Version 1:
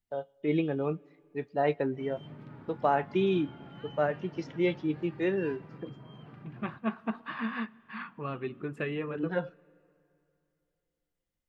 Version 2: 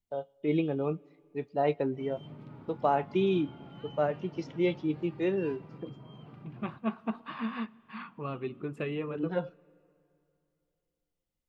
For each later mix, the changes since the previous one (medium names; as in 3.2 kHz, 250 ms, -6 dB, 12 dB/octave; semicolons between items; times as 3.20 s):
master: add peaking EQ 1.7 kHz -8 dB 0.47 oct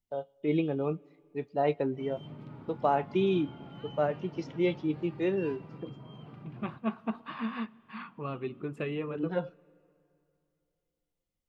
background: send +6.0 dB